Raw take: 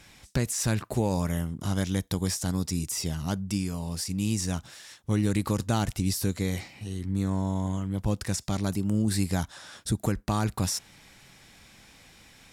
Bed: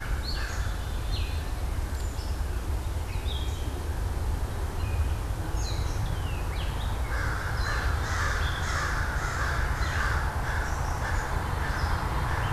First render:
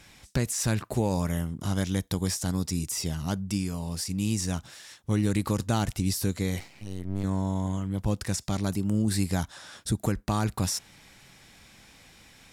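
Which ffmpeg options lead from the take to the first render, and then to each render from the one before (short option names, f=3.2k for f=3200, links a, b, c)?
-filter_complex "[0:a]asettb=1/sr,asplit=3[a][b][c];[a]atrim=end=6.594[d];[b]atrim=start=6.59:end=7.24,asetpts=PTS-STARTPTS,afade=t=in:d=0.004:c=qsin,afade=t=out:st=0.646:d=0.004:c=qsin,aeval=exprs='max(val(0),0)':c=same[e];[c]atrim=start=7.236[f];[d][e]acrossfade=d=0.004:c1=hsin:c2=qsin[g];[g][f]acrossfade=d=0.004:c1=qsin:c2=hsin"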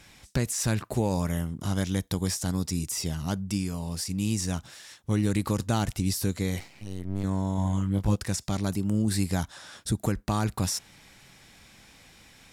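-filter_complex "[0:a]asettb=1/sr,asplit=3[a][b][c];[a]atrim=end=7.564[d];[b]atrim=start=7.56:end=8.16,asetpts=PTS-STARTPTS,afade=t=in:d=0.004:c=qsin,afade=t=out:st=0.596:d=0.004:c=qsin,asplit=2[e][f];[f]adelay=20,volume=-3.5dB[g];[e][g]amix=inputs=2:normalize=0,atrim=end_sample=26460[h];[c]atrim=start=8.156[i];[d][h]acrossfade=d=0.004:c1=hsin:c2=qsin[j];[j][i]acrossfade=d=0.004:c1=qsin:c2=hsin"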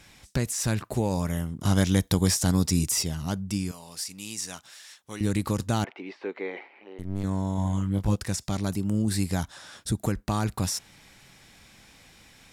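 -filter_complex "[0:a]asettb=1/sr,asplit=3[a][b][c];[a]atrim=end=1.654[d];[b]atrim=start=1.65:end=3.03,asetpts=PTS-STARTPTS,afade=t=in:d=0.004:c=qsin,afade=t=out:st=1.376:d=0.004:c=qsin,acontrast=47[e];[c]atrim=start=3.026[f];[d][e]acrossfade=d=0.004:c1=hsin:c2=qsin[g];[g][f]acrossfade=d=0.004:c1=qsin:c2=hsin,asettb=1/sr,asplit=3[h][i][j];[h]atrim=end=3.714[k];[i]atrim=start=3.71:end=5.21,asetpts=PTS-STARTPTS,afade=t=in:d=0.004:c=qsin,afade=t=out:st=1.496:d=0.004:c=qsin,highpass=f=1.1k:p=1[l];[j]atrim=start=5.206[m];[k][l]acrossfade=d=0.004:c1=hsin:c2=qsin[n];[n][m]acrossfade=d=0.004:c1=qsin:c2=hsin,asettb=1/sr,asplit=3[o][p][q];[o]atrim=end=5.844[r];[p]atrim=start=5.84:end=6.99,asetpts=PTS-STARTPTS,afade=t=in:d=0.004:c=qsin,afade=t=out:st=1.146:d=0.004:c=qsin,highpass=f=340:w=0.5412,highpass=f=340:w=1.3066,equalizer=f=400:t=q:w=4:g=5,equalizer=f=860:t=q:w=4:g=6,equalizer=f=2.2k:t=q:w=4:g=4,lowpass=f=2.6k:w=0.5412,lowpass=f=2.6k:w=1.3066[s];[q]atrim=start=6.986[t];[r][s]acrossfade=d=0.004:c1=hsin:c2=qsin[u];[u][t]acrossfade=d=0.004:c1=qsin:c2=hsin"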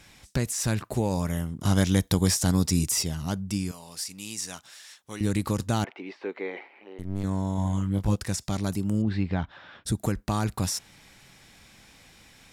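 -filter_complex "[0:a]asplit=3[a][b][c];[a]afade=t=out:st=9.01:d=0.02[d];[b]lowpass=f=3.2k:w=0.5412,lowpass=f=3.2k:w=1.3066,afade=t=in:st=9.01:d=0.02,afade=t=out:st=9.84:d=0.02[e];[c]afade=t=in:st=9.84:d=0.02[f];[d][e][f]amix=inputs=3:normalize=0"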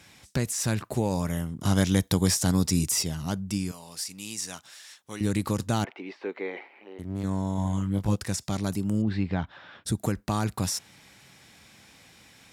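-af "highpass=78"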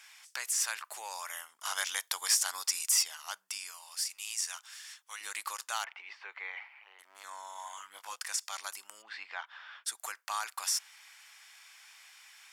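-af "highpass=f=1k:w=0.5412,highpass=f=1k:w=1.3066,bandreject=f=3.9k:w=11"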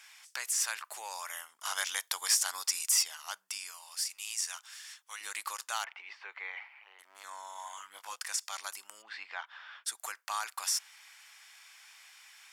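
-af anull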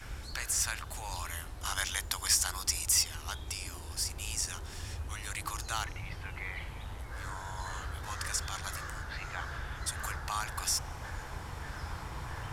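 -filter_complex "[1:a]volume=-12.5dB[a];[0:a][a]amix=inputs=2:normalize=0"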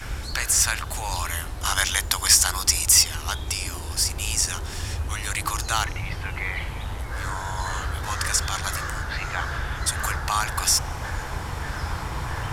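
-af "volume=11dB"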